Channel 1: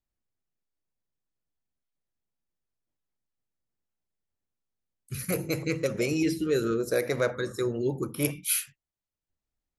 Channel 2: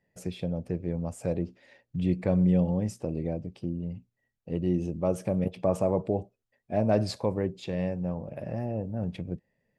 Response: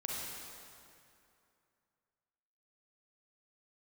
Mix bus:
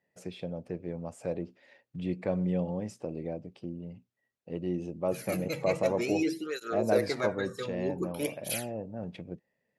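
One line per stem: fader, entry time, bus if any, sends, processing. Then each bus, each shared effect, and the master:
+1.0 dB, 0.00 s, no send, through-zero flanger with one copy inverted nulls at 0.53 Hz, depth 3.1 ms
−1.0 dB, 0.00 s, no send, no processing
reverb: not used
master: high-pass filter 330 Hz 6 dB per octave; high-shelf EQ 7,300 Hz −10 dB

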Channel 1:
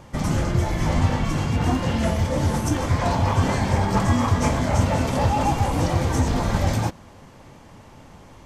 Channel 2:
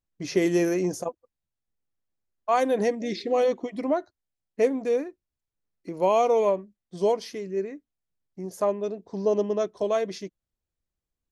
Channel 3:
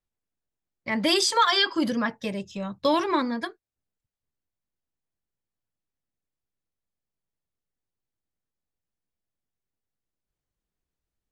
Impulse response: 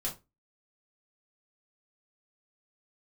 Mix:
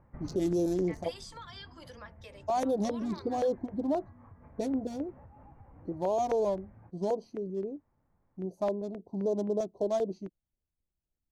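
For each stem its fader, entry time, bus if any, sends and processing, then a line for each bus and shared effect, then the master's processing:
−19.0 dB, 0.00 s, no send, inverse Chebyshev low-pass filter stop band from 3,800 Hz, stop band 40 dB; low-shelf EQ 100 Hz +7.5 dB; downward compressor 6 to 1, threshold −19 dBFS, peak gain reduction 9.5 dB; automatic ducking −12 dB, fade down 1.40 s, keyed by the second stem
−0.5 dB, 0.00 s, no send, adaptive Wiener filter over 25 samples; flat-topped bell 1,800 Hz −14 dB; auto-filter notch square 3.8 Hz 470–2,000 Hz
−14.0 dB, 0.00 s, no send, high-pass filter 440 Hz 24 dB per octave; downward compressor 6 to 1, threshold −31 dBFS, peak gain reduction 14.5 dB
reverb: not used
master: brickwall limiter −21.5 dBFS, peak gain reduction 9 dB

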